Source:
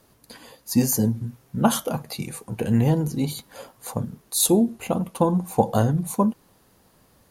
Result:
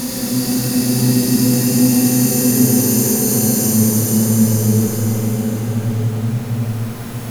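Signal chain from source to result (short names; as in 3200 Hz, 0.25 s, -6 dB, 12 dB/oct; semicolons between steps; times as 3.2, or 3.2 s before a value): zero-crossing step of -27 dBFS; Paulstretch 11×, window 0.50 s, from 0.65; Schroeder reverb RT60 3.2 s, combs from 32 ms, DRR -1 dB; gain +1.5 dB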